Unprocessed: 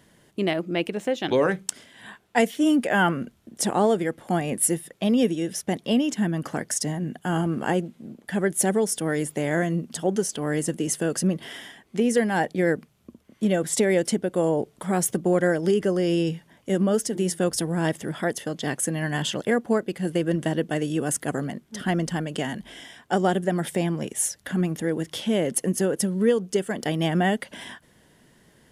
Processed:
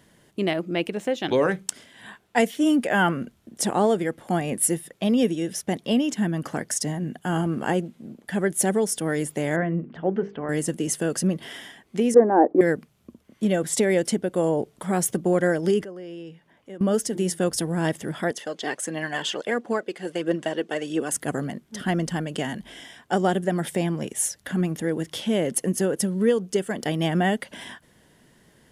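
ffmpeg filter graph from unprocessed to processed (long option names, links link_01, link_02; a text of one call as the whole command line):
ffmpeg -i in.wav -filter_complex "[0:a]asettb=1/sr,asplit=3[link_01][link_02][link_03];[link_01]atrim=end=9.564[link_04];[link_02]atrim=start=9.56:end=10.49,asetpts=PTS-STARTPTS,afade=type=in:duration=0.004:curve=qsin,afade=type=out:start_time=0.926:duration=0.004:curve=qsin,lowpass=frequency=2300:width=0.5412,lowpass=frequency=2300:width=1.3066,bandreject=frequency=50:width_type=h:width=6,bandreject=frequency=100:width_type=h:width=6,bandreject=frequency=150:width_type=h:width=6,bandreject=frequency=200:width_type=h:width=6,bandreject=frequency=250:width_type=h:width=6,bandreject=frequency=300:width_type=h:width=6,bandreject=frequency=350:width_type=h:width=6,bandreject=frequency=400:width_type=h:width=6,bandreject=frequency=450:width_type=h:width=6[link_05];[link_03]atrim=start=10.486[link_06];[link_04][link_05]acrossfade=duration=0.004:curve1=hsin:curve2=qsin[link_07];[link_07][link_06]acrossfade=duration=0.004:curve1=qsin:curve2=hsin,asettb=1/sr,asplit=3[link_08][link_09][link_10];[link_08]atrim=end=12.144[link_11];[link_09]atrim=start=12.14:end=12.61,asetpts=PTS-STARTPTS,afade=type=in:duration=0.004:curve=qsin,afade=type=out:start_time=0.466:duration=0.004:curve=qsin,lowshelf=frequency=220:width_type=q:width=3:gain=-11.5,acontrast=59,lowpass=frequency=1100:width=0.5412,lowpass=frequency=1100:width=1.3066[link_12];[link_10]atrim=start=12.606[link_13];[link_11][link_12]acrossfade=duration=0.004:curve1=hsin:curve2=qsin[link_14];[link_14][link_13]acrossfade=duration=0.004:curve1=qsin:curve2=hsin,asettb=1/sr,asplit=3[link_15][link_16][link_17];[link_15]atrim=end=15.844[link_18];[link_16]atrim=start=15.84:end=16.81,asetpts=PTS-STARTPTS,afade=type=in:duration=0.004:curve=qsin,afade=type=out:start_time=0.966:duration=0.004:curve=qsin,bass=frequency=250:gain=-6,treble=frequency=4000:gain=-10,acompressor=threshold=-59dB:ratio=1.5:attack=3.2:release=140:knee=1:detection=peak[link_19];[link_17]atrim=start=16.806[link_20];[link_18][link_19]acrossfade=duration=0.004:curve1=hsin:curve2=qsin[link_21];[link_21][link_20]acrossfade=duration=0.004:curve1=qsin:curve2=hsin,asettb=1/sr,asplit=3[link_22][link_23][link_24];[link_22]atrim=end=18.314[link_25];[link_23]atrim=start=18.31:end=21.12,asetpts=PTS-STARTPTS,afade=type=in:duration=0.004:curve=qsin,afade=type=out:start_time=2.806:duration=0.004:curve=qsin,highpass=320,lowpass=7500,aphaser=in_gain=1:out_gain=1:delay=2.9:decay=0.4:speed=1.5:type=triangular[link_26];[link_24]atrim=start=21.116[link_27];[link_25][link_26]acrossfade=duration=0.004:curve1=hsin:curve2=qsin[link_28];[link_28][link_27]acrossfade=duration=0.004:curve1=qsin:curve2=hsin" out.wav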